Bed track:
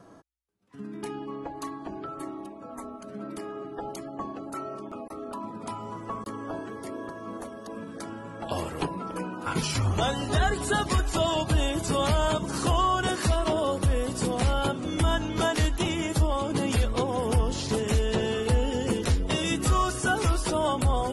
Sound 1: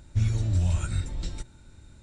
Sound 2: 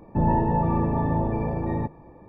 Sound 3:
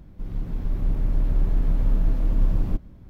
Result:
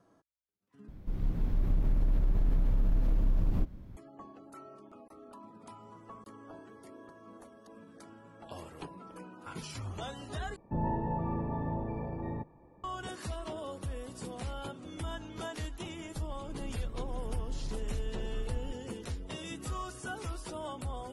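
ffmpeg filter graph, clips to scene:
-filter_complex "[3:a]asplit=2[a][b];[0:a]volume=-14.5dB[c];[a]acompressor=threshold=-20dB:ratio=6:attack=3.2:release=140:knee=1:detection=peak[d];[c]asplit=3[e][f][g];[e]atrim=end=0.884[h];[d]atrim=end=3.09,asetpts=PTS-STARTPTS,volume=-2dB[i];[f]atrim=start=3.966:end=10.564[j];[2:a]atrim=end=2.28,asetpts=PTS-STARTPTS,volume=-11dB[k];[g]atrim=start=12.836[l];[b]atrim=end=3.09,asetpts=PTS-STARTPTS,volume=-17dB,afade=t=in:d=0.004:c=hsin,afade=t=out:st=3.086:d=0.004:c=hsin,adelay=15960[m];[h][i]acrossfade=d=0.004:c1=hsin:c2=hsin[n];[n][j]acrossfade=d=0.004:c1=hsin:c2=hsin[o];[o][k]acrossfade=d=0.004:c1=hsin:c2=hsin[p];[p][l]acrossfade=d=0.004:c1=hsin:c2=hsin[q];[q][m]amix=inputs=2:normalize=0"

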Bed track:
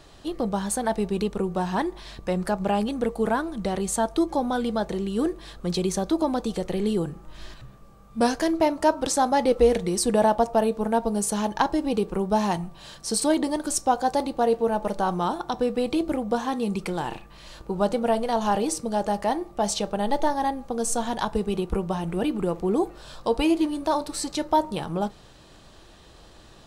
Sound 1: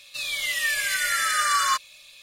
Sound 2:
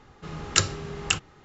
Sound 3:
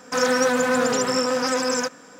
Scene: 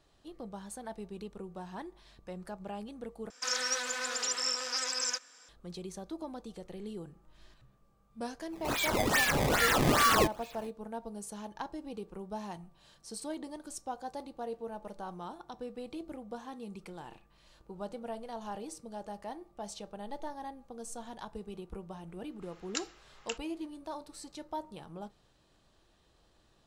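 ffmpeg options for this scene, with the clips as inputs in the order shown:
-filter_complex "[0:a]volume=-17.5dB[a];[3:a]bandpass=f=4.9k:t=q:w=0.86:csg=0[b];[1:a]acrusher=samples=18:mix=1:aa=0.000001:lfo=1:lforange=28.8:lforate=2.4[c];[2:a]highpass=1.2k[d];[a]asplit=2[e][f];[e]atrim=end=3.304[g];[b]atrim=end=2.19,asetpts=PTS-STARTPTS,volume=-3.5dB[h];[f]atrim=start=5.486[i];[c]atrim=end=2.22,asetpts=PTS-STARTPTS,volume=-2.5dB,afade=t=in:d=0.05,afade=t=out:st=2.17:d=0.05,adelay=374850S[j];[d]atrim=end=1.44,asetpts=PTS-STARTPTS,volume=-15dB,afade=t=in:d=0.004:c=hsin,afade=t=out:st=1.436:d=0.004:c=hsin,adelay=22190[k];[g][h]acrossfade=d=0.004:c1=hsin:c2=hsin[l];[l][i]acrossfade=d=0.004:c1=hsin:c2=hsin[m];[m][j][k]amix=inputs=3:normalize=0"

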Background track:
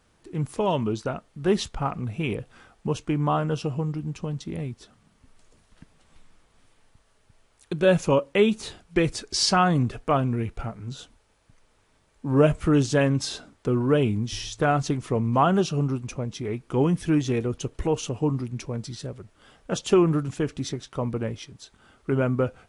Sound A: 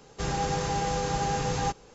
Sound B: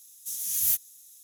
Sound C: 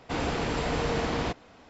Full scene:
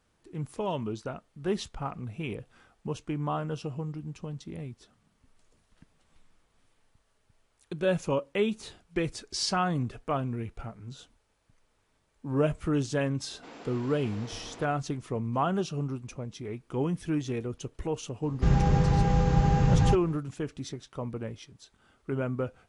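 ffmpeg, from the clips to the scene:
-filter_complex "[0:a]volume=-7.5dB[a];[3:a]highpass=f=190:w=0.5412,highpass=f=190:w=1.3066[b];[1:a]bass=f=250:g=14,treble=f=4k:g=-11[c];[b]atrim=end=1.69,asetpts=PTS-STARTPTS,volume=-16.5dB,afade=t=in:d=0.004:c=hsin,afade=t=out:st=1.686:d=0.004:c=hsin,adelay=13330[d];[c]atrim=end=1.94,asetpts=PTS-STARTPTS,volume=-2dB,afade=t=in:d=0.004:c=hsin,afade=t=out:st=1.936:d=0.004:c=hsin,adelay=18230[e];[a][d][e]amix=inputs=3:normalize=0"

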